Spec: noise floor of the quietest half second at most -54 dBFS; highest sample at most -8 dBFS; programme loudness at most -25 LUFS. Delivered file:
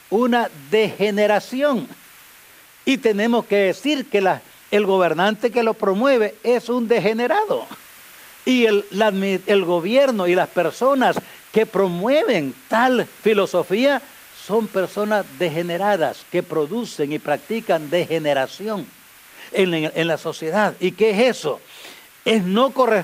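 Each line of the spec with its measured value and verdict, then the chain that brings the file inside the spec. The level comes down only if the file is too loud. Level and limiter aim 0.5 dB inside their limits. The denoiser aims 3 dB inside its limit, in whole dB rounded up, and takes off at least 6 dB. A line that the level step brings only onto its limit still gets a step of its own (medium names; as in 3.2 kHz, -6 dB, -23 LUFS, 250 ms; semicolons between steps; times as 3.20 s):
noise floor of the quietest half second -47 dBFS: fail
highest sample -4.5 dBFS: fail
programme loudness -19.5 LUFS: fail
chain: noise reduction 6 dB, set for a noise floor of -47 dBFS; trim -6 dB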